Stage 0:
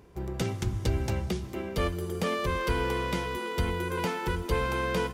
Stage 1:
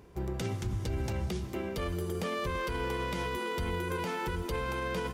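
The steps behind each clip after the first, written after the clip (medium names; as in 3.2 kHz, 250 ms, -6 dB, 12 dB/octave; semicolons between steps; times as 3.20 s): peak limiter -25 dBFS, peak gain reduction 9.5 dB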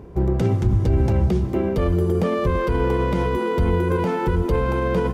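tilt shelf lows +8.5 dB, about 1.4 kHz; trim +7 dB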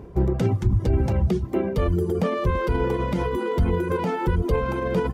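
reverb removal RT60 1.1 s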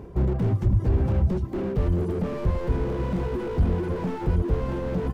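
slew-rate limiter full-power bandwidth 18 Hz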